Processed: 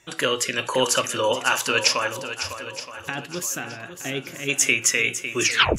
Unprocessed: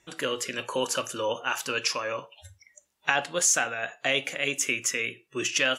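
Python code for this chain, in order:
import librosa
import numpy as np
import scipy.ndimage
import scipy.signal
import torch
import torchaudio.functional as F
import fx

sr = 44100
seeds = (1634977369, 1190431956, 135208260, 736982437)

y = fx.tape_stop_end(x, sr, length_s=0.35)
y = fx.peak_eq(y, sr, hz=120.0, db=4.5, octaves=1.0)
y = fx.spec_box(y, sr, start_s=2.07, length_s=2.42, low_hz=420.0, high_hz=11000.0, gain_db=-14)
y = fx.low_shelf(y, sr, hz=490.0, db=-4.5)
y = fx.echo_swing(y, sr, ms=921, ratio=1.5, feedback_pct=34, wet_db=-10.5)
y = y * 10.0 ** (8.0 / 20.0)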